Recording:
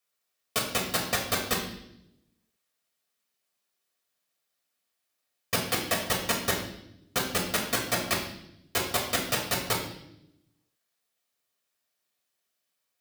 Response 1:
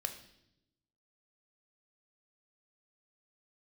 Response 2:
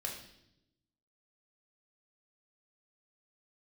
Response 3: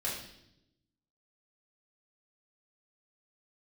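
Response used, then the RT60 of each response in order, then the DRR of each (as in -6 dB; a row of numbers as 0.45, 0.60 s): 2; 0.80, 0.80, 0.80 s; 5.5, -1.0, -6.5 dB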